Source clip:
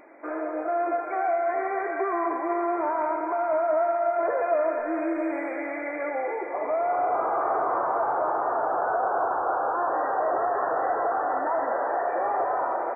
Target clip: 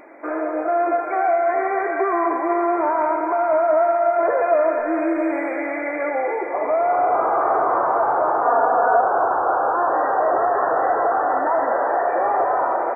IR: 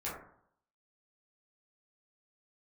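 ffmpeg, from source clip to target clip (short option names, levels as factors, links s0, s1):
-filter_complex "[0:a]asettb=1/sr,asplit=3[s0][s1][s2];[s0]atrim=end=8.434[s3];[s1]atrim=start=8.43:end=9.01,asetpts=PTS-STARTPTS,afade=t=in:d=0.004:c=qsin,afade=t=out:st=0.576:d=0.004:c=qsin,aecho=1:1:4.2:0.75,atrim=end_sample=25578[s4];[s2]atrim=start=9.006[s5];[s3][s4]acrossfade=d=0.004:c1=hsin:c2=qsin[s6];[s6][s5]acrossfade=d=0.004:c1=qsin:c2=hsin,volume=2.11"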